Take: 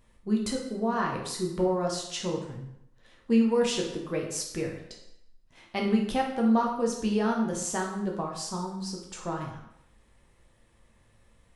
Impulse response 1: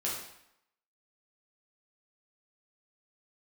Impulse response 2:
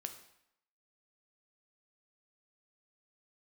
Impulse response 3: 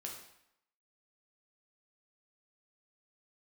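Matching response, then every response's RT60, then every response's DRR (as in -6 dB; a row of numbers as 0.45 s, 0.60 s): 3; 0.75 s, 0.75 s, 0.75 s; -6.0 dB, 6.5 dB, -1.0 dB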